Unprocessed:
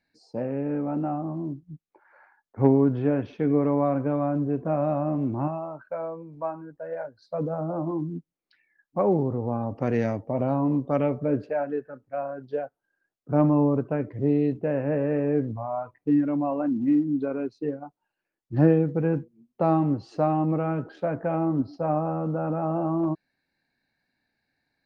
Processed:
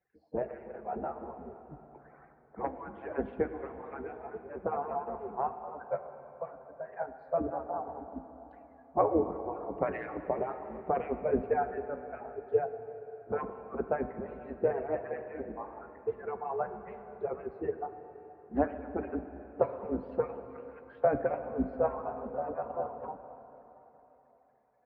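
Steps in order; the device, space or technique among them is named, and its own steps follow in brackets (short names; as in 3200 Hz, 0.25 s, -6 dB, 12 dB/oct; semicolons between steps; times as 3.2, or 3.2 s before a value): median-filter separation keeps percussive; 20.41–21.04 Bessel high-pass 1500 Hz, order 6; sub-octave bass pedal (octaver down 2 oct, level -4 dB; speaker cabinet 63–2100 Hz, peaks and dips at 99 Hz -7 dB, 430 Hz +5 dB, 730 Hz +5 dB); plate-style reverb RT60 3.8 s, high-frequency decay 0.95×, DRR 8.5 dB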